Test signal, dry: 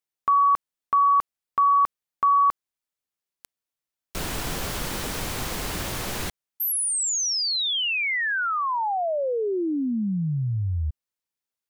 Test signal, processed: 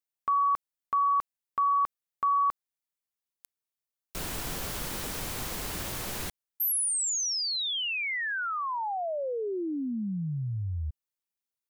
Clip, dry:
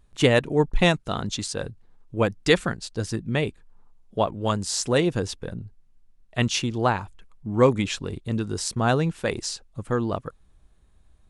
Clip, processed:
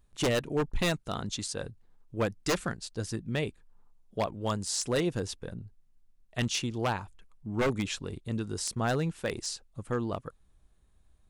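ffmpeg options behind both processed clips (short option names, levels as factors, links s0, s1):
-af "crystalizer=i=0.5:c=0,aeval=exprs='0.2*(abs(mod(val(0)/0.2+3,4)-2)-1)':c=same,volume=0.473"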